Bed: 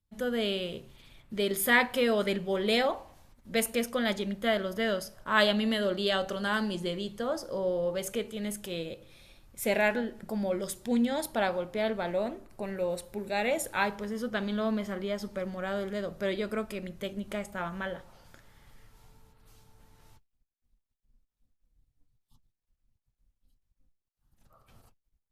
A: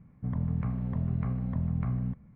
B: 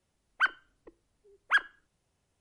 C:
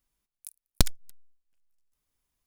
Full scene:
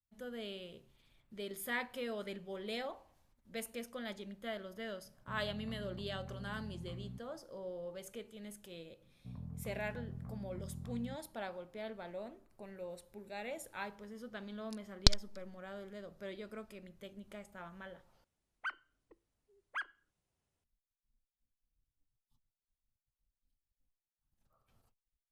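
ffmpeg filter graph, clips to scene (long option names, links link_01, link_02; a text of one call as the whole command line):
ffmpeg -i bed.wav -i cue0.wav -i cue1.wav -i cue2.wav -filter_complex "[1:a]asplit=2[link_01][link_02];[0:a]volume=-14.5dB[link_03];[link_01]alimiter=level_in=2.5dB:limit=-24dB:level=0:latency=1:release=71,volume=-2.5dB[link_04];[link_02]lowpass=1400[link_05];[3:a]lowpass=frequency=4800:width_type=q:width=2.9[link_06];[2:a]alimiter=limit=-21.5dB:level=0:latency=1:release=303[link_07];[link_03]asplit=2[link_08][link_09];[link_08]atrim=end=18.244[link_10];[link_07]atrim=end=2.4,asetpts=PTS-STARTPTS,volume=-10dB[link_11];[link_09]atrim=start=20.636[link_12];[link_04]atrim=end=2.35,asetpts=PTS-STARTPTS,volume=-13.5dB,afade=type=in:duration=0.004:curve=hsin,afade=type=out:start_time=2.346:duration=0.004:curve=hsin,adelay=222705S[link_13];[link_05]atrim=end=2.35,asetpts=PTS-STARTPTS,volume=-16dB,afade=type=in:duration=0.004:curve=hsin,afade=type=out:start_time=2.346:duration=0.004:curve=hsin,adelay=9020[link_14];[link_06]atrim=end=2.46,asetpts=PTS-STARTPTS,volume=-4.5dB,afade=type=in:duration=0.004:curve=hsin,afade=type=out:start_time=2.456:duration=0.004:curve=hsin,adelay=14260[link_15];[link_10][link_11]acrossfade=duration=0.004:curve1=hsin:curve2=hsin[link_16];[link_16][link_12]acrossfade=duration=0.004:curve1=hsin:curve2=hsin[link_17];[link_17][link_13][link_14][link_15]amix=inputs=4:normalize=0" out.wav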